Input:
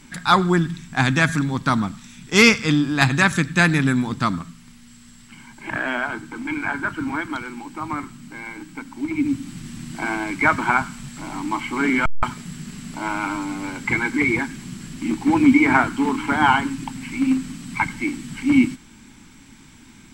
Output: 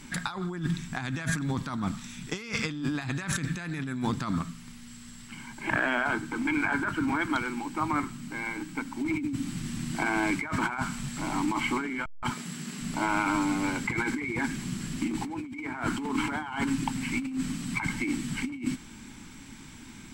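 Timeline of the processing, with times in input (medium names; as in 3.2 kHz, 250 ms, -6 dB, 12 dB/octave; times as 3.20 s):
12.31–12.81 s: high-pass 220 Hz
whole clip: compressor with a negative ratio -26 dBFS, ratio -1; trim -4.5 dB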